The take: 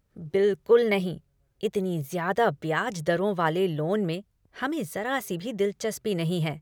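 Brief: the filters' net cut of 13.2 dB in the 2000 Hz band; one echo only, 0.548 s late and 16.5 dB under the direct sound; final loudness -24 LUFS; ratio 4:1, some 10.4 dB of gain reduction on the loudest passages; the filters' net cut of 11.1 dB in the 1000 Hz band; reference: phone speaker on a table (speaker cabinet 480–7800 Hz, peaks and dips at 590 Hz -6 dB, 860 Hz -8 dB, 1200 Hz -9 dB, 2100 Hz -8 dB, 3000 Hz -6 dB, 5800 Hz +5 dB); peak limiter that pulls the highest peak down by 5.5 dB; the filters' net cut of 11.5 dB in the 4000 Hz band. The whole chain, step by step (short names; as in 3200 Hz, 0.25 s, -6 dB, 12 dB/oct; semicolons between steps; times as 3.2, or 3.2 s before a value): bell 1000 Hz -4 dB; bell 2000 Hz -8.5 dB; bell 4000 Hz -6.5 dB; compressor 4:1, threshold -27 dBFS; limiter -23.5 dBFS; speaker cabinet 480–7800 Hz, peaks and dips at 590 Hz -6 dB, 860 Hz -8 dB, 1200 Hz -9 dB, 2100 Hz -8 dB, 3000 Hz -6 dB, 5800 Hz +5 dB; echo 0.548 s -16.5 dB; gain +18.5 dB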